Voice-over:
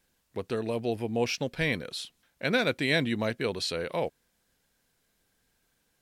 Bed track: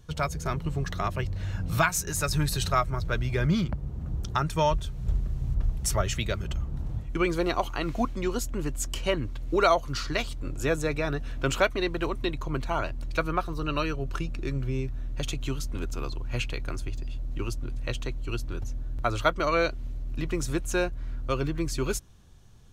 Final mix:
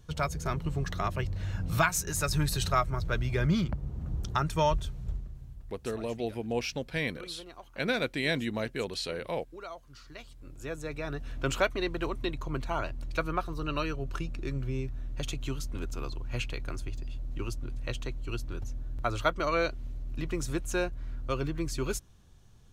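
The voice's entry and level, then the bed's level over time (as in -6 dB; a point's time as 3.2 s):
5.35 s, -3.5 dB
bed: 4.88 s -2 dB
5.66 s -21.5 dB
9.88 s -21.5 dB
11.37 s -3.5 dB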